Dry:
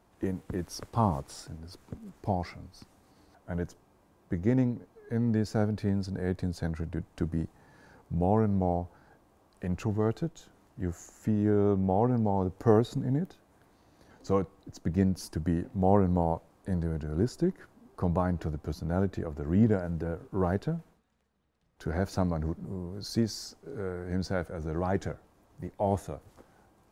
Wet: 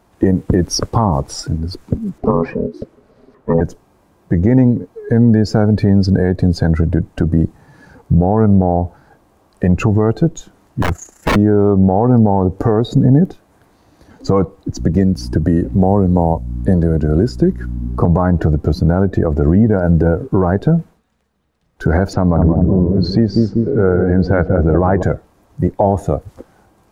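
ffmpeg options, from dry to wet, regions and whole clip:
-filter_complex "[0:a]asettb=1/sr,asplit=3[a][b][c];[a]atrim=end=2.184[d];[b]atrim=start=2.18:end=3.61,asetpts=PTS-STARTPTS,afade=t=in:d=0.004:c=qsin,afade=t=out:st=1.426:d=0.004:c=qsin,bass=f=250:g=7,treble=f=4k:g=-10,aeval=exprs='val(0)*sin(2*PI*330*n/s)':c=same[e];[c]atrim=start=3.606[f];[d][e]acrossfade=d=0.004:c1=hsin:c2=qsin[g];[g][f]acrossfade=d=0.004:c1=qsin:c2=hsin,asettb=1/sr,asplit=3[h][i][j];[h]atrim=end=10.824[k];[i]atrim=start=10.82:end=11.36,asetpts=PTS-STARTPTS,afade=t=in:d=0.004:c=qsin,afade=t=out:st=0.536:d=0.004:c=qsin,tremolo=f=29:d=0.621,aeval=exprs='(mod(37.6*val(0)+1,2)-1)/37.6':c=same[l];[j]atrim=start=11.356[m];[k][l]acrossfade=d=0.004:c1=hsin:c2=qsin[n];[n][m]acrossfade=d=0.004:c1=qsin:c2=hsin,asettb=1/sr,asplit=3[o][p][q];[o]atrim=end=14.794[r];[p]atrim=start=14.79:end=18.05,asetpts=PTS-STARTPTS,afade=t=in:d=0.004:c=qsin,afade=t=out:st=3.256:d=0.004:c=qsin,aeval=exprs='val(0)+0.00631*(sin(2*PI*60*n/s)+sin(2*PI*2*60*n/s)/2+sin(2*PI*3*60*n/s)/3+sin(2*PI*4*60*n/s)/4+sin(2*PI*5*60*n/s)/5)':c=same,acrossover=split=250|1000|4500[s][t][u][v];[s]acompressor=threshold=-38dB:ratio=3[w];[t]acompressor=threshold=-39dB:ratio=3[x];[u]acompressor=threshold=-54dB:ratio=3[y];[v]acompressor=threshold=-53dB:ratio=3[z];[w][x][y][z]amix=inputs=4:normalize=0[aa];[q]atrim=start=18.046[ab];[r][aa]acrossfade=d=0.004:c1=hsin:c2=qsin[ac];[ac][ab]acrossfade=d=0.004:c1=qsin:c2=hsin,asettb=1/sr,asplit=3[ad][ae][af];[ad]atrim=end=22.134[ag];[ae]atrim=start=22.13:end=25.03,asetpts=PTS-STARTPTS,afade=t=in:d=0.004:c=qsin,afade=t=out:st=2.896:d=0.004:c=qsin,lowpass=2.9k,asplit=2[ah][ai];[ai]adelay=193,lowpass=f=850:p=1,volume=-6.5dB,asplit=2[aj][ak];[ak]adelay=193,lowpass=f=850:p=1,volume=0.54,asplit=2[al][am];[am]adelay=193,lowpass=f=850:p=1,volume=0.54,asplit=2[an][ao];[ao]adelay=193,lowpass=f=850:p=1,volume=0.54,asplit=2[ap][aq];[aq]adelay=193,lowpass=f=850:p=1,volume=0.54,asplit=2[ar][as];[as]adelay=193,lowpass=f=850:p=1,volume=0.54,asplit=2[at][au];[au]adelay=193,lowpass=f=850:p=1,volume=0.54[av];[ah][aj][al][an][ap][ar][at][av]amix=inputs=8:normalize=0,atrim=end_sample=127890[aw];[af]atrim=start=25.026[ax];[ag][aw]acrossfade=d=0.004:c1=hsin:c2=qsin[ay];[ay][ax]acrossfade=d=0.004:c1=qsin:c2=hsin,afftdn=nr=14:nf=-43,acompressor=threshold=-29dB:ratio=6,alimiter=level_in=25dB:limit=-1dB:release=50:level=0:latency=1,volume=-1dB"

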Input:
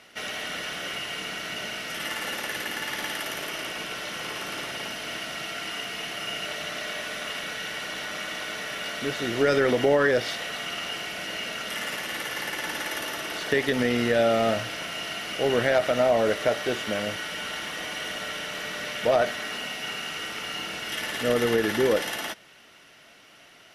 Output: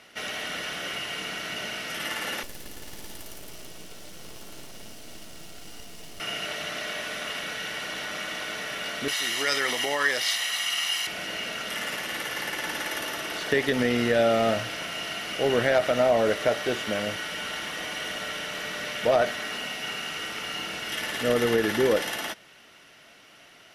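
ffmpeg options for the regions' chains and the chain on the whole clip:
-filter_complex "[0:a]asettb=1/sr,asplit=3[a][b][c];[a]atrim=end=2.434[d];[b]atrim=start=2.43:end=6.2,asetpts=PTS-STARTPTS,afade=t=in:d=0.004:c=qsin,afade=t=out:st=3.766:d=0.004:c=qsin,aeval=exprs='max(val(0),0)':c=same,equalizer=f=1.7k:w=0.46:g=-13.5[e];[c]atrim=start=6.196[f];[d][e]acrossfade=d=0.004:c1=hsin:c2=qsin[g];[g][f]acrossfade=d=0.004:c1=qsin:c2=hsin,asettb=1/sr,asplit=3[h][i][j];[h]atrim=end=9.084[k];[i]atrim=start=9.08:end=11.07,asetpts=PTS-STARTPTS,afade=t=in:d=0.004:c=qsin,afade=t=out:st=1.986:d=0.004:c=qsin,highpass=f=1.1k:p=1,highshelf=f=2.6k:g=9.5,aecho=1:1:1:0.41,atrim=end_sample=87759[l];[j]atrim=start=11.066[m];[k][l]acrossfade=d=0.004:c1=hsin:c2=qsin[n];[n][m]acrossfade=d=0.004:c1=qsin:c2=hsin"

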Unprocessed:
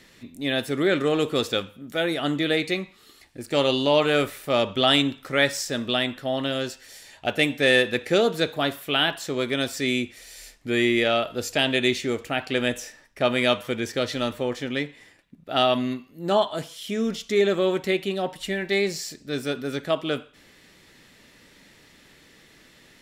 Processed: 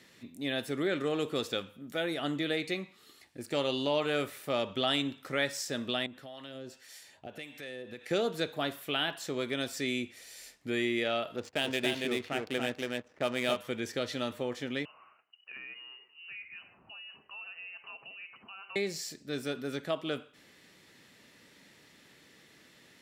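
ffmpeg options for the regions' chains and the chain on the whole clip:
-filter_complex "[0:a]asettb=1/sr,asplit=3[a][b][c];[a]atrim=end=6.064[d];[b]atrim=start=6.06:end=8.11,asetpts=PTS-STARTPTS,afade=t=in:d=0.004:c=qsin,afade=t=out:st=2.046:d=0.004:c=qsin,acompressor=threshold=-33dB:ratio=4:attack=3.2:release=140:knee=1:detection=peak,acrossover=split=770[e][f];[e]aeval=exprs='val(0)*(1-0.7/2+0.7/2*cos(2*PI*1.7*n/s))':c=same[g];[f]aeval=exprs='val(0)*(1-0.7/2-0.7/2*cos(2*PI*1.7*n/s))':c=same[h];[g][h]amix=inputs=2:normalize=0[i];[c]atrim=start=8.106[j];[d][i]acrossfade=d=0.004:c1=hsin:c2=qsin[k];[k][j]acrossfade=d=0.004:c1=qsin:c2=hsin,asettb=1/sr,asplit=3[l][m][n];[l]atrim=end=11.364[o];[m]atrim=start=11.36:end=13.57,asetpts=PTS-STARTPTS,afade=t=in:d=0.004:c=qsin,afade=t=out:st=2.206:d=0.004:c=qsin,aecho=1:1:280:0.708,atrim=end_sample=97461,aeval=exprs='sgn(val(0))*max(abs(val(0))-0.0075,0)':c=same,adynamicsmooth=sensitivity=5:basefreq=1.4k[p];[n]atrim=start=13.566[q];[o][p]acrossfade=d=0.004:c1=hsin:c2=qsin[r];[r][q]acrossfade=d=0.004:c1=qsin:c2=hsin,asettb=1/sr,asplit=3[s][t][u];[s]atrim=end=14.854[v];[t]atrim=start=14.85:end=18.76,asetpts=PTS-STARTPTS,afade=t=in:d=0.004:c=qsin,afade=t=out:st=3.906:d=0.004:c=qsin,acompressor=threshold=-37dB:ratio=5:attack=3.2:release=140:knee=1:detection=peak,highpass=f=340:p=1,lowpass=f=2.6k:t=q:w=0.5098,lowpass=f=2.6k:t=q:w=0.6013,lowpass=f=2.6k:t=q:w=0.9,lowpass=f=2.6k:t=q:w=2.563,afreqshift=-3100[w];[u]atrim=start=18.756[x];[v][w]acrossfade=d=0.004:c1=hsin:c2=qsin[y];[y][x]acrossfade=d=0.004:c1=qsin:c2=hsin,highpass=98,acompressor=threshold=-28dB:ratio=1.5,volume=-5.5dB"

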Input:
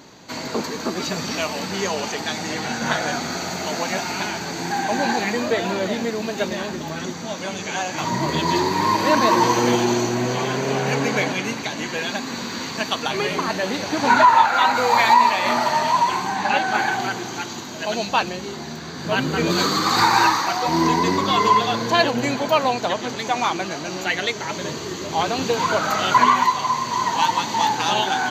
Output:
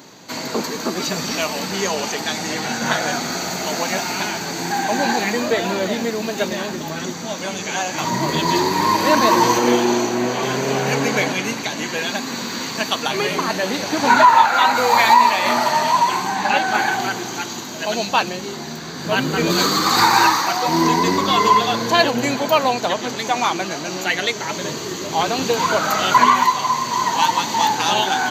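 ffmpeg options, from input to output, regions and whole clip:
-filter_complex "[0:a]asettb=1/sr,asplit=3[a][b][c];[a]atrim=end=9.584[d];[b]atrim=start=9.58:end=10.43,asetpts=PTS-STARTPTS,afade=t=in:d=0.004:c=qsin,afade=t=out:st=0.846:d=0.004:c=qsin,highpass=200,highshelf=f=4.3k:g=-5.5,asplit=2[e][f];[f]adelay=41,volume=-8dB[g];[e][g]amix=inputs=2:normalize=0,atrim=end_sample=37485[h];[c]atrim=start=10.426[i];[d][h]acrossfade=d=0.004:c1=hsin:c2=qsin[j];[j][i]acrossfade=d=0.004:c1=qsin:c2=hsin,highpass=110,highshelf=f=9.2k:g=9.5,volume=2dB"

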